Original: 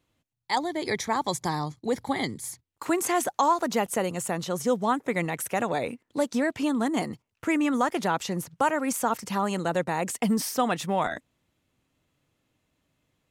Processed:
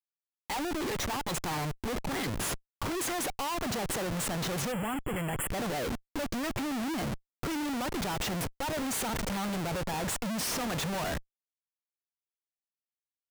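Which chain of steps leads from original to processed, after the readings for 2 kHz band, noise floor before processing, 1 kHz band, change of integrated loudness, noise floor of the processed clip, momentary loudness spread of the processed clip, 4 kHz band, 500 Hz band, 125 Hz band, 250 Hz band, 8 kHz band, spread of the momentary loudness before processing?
−4.5 dB, −79 dBFS, −8.5 dB, −5.5 dB, below −85 dBFS, 4 LU, 0.0 dB, −7.5 dB, −0.5 dB, −6.0 dB, −1.5 dB, 6 LU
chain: comparator with hysteresis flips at −37.5 dBFS
gain on a spectral selection 0:04.72–0:05.49, 3,400–7,000 Hz −23 dB
level −4 dB

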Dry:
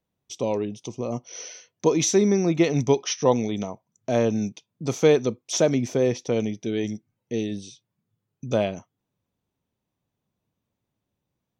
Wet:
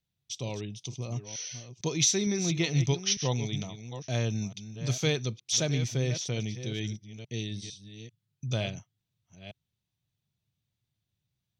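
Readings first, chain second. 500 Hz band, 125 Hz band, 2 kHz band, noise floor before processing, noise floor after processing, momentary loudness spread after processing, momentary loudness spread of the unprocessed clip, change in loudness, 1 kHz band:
−13.5 dB, +0.5 dB, −2.5 dB, −83 dBFS, −85 dBFS, 15 LU, 17 LU, −6.5 dB, −12.0 dB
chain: delay that plays each chunk backwards 453 ms, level −11 dB
octave-band graphic EQ 125/250/500/1,000/4,000 Hz +7/−9/−9/−8/+7 dB
level −3 dB

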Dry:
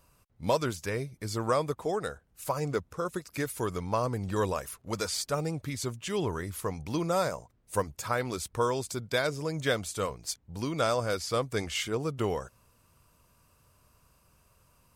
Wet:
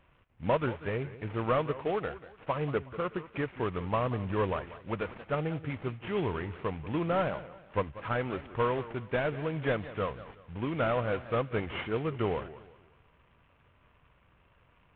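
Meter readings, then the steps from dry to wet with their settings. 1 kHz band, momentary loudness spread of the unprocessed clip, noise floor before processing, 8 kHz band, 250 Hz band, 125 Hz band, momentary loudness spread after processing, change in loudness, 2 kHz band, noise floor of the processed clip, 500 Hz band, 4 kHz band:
−1.0 dB, 6 LU, −67 dBFS, below −40 dB, 0.0 dB, 0.0 dB, 7 LU, −1.0 dB, −1.0 dB, −65 dBFS, −0.5 dB, −9.0 dB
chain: variable-slope delta modulation 16 kbit/s
delay with a high-pass on its return 81 ms, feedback 75%, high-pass 1,500 Hz, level −22.5 dB
feedback echo with a swinging delay time 184 ms, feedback 34%, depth 178 cents, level −15.5 dB

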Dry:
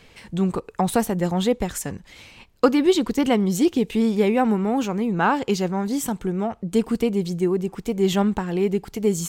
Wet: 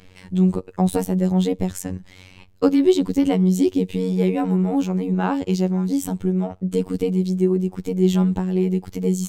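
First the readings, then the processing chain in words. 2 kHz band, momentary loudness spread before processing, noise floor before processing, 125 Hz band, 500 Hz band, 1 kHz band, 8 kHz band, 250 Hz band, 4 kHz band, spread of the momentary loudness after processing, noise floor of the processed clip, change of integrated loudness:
−7.0 dB, 6 LU, −52 dBFS, +6.0 dB, −0.5 dB, −5.0 dB, −3.5 dB, +2.5 dB, −4.5 dB, 6 LU, −48 dBFS, +1.5 dB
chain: low-shelf EQ 340 Hz +9 dB
phases set to zero 92.4 Hz
dynamic equaliser 1,400 Hz, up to −6 dB, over −38 dBFS, Q 0.99
level −1 dB

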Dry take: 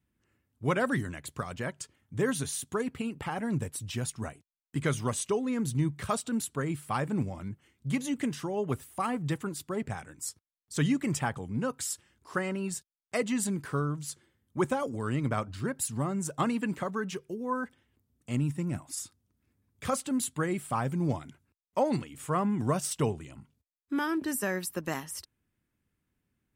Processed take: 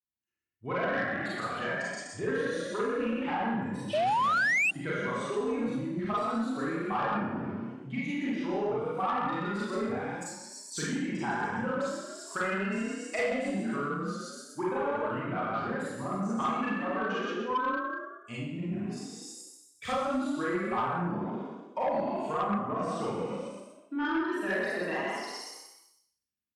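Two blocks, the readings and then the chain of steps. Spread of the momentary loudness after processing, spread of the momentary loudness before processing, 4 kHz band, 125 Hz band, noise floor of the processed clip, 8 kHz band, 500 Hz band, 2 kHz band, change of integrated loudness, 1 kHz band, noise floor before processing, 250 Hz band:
9 LU, 9 LU, +0.5 dB, −7.0 dB, −64 dBFS, −8.5 dB, +2.0 dB, +6.0 dB, +0.5 dB, +4.5 dB, −83 dBFS, −1.0 dB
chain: spectral dynamics exaggerated over time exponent 1.5
in parallel at −2 dB: speech leveller 2 s
on the sum: echo with shifted repeats 124 ms, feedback 45%, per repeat +32 Hz, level −5 dB
downward compressor 6 to 1, threshold −29 dBFS, peak gain reduction 12 dB
high-pass filter 150 Hz 6 dB per octave
treble cut that deepens with the level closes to 2,300 Hz, closed at −32 dBFS
four-comb reverb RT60 0.67 s, combs from 31 ms, DRR −7 dB
sound drawn into the spectrogram rise, 0:03.93–0:04.71, 580–2,800 Hz −23 dBFS
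low-shelf EQ 230 Hz −11.5 dB
soft clipping −22 dBFS, distortion −18 dB

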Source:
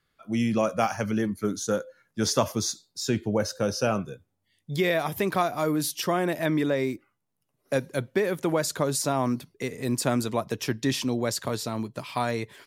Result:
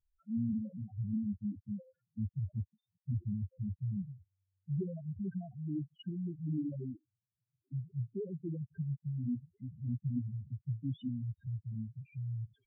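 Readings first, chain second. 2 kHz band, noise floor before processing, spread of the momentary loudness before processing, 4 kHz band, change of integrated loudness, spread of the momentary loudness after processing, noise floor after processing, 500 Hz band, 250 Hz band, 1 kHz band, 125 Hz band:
below −40 dB, −77 dBFS, 7 LU, below −30 dB, −12.0 dB, 8 LU, below −85 dBFS, −24.0 dB, −10.0 dB, below −35 dB, −3.5 dB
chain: guitar amp tone stack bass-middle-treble 10-0-1
spectral peaks only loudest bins 2
level +11.5 dB
AAC 16 kbit/s 32,000 Hz

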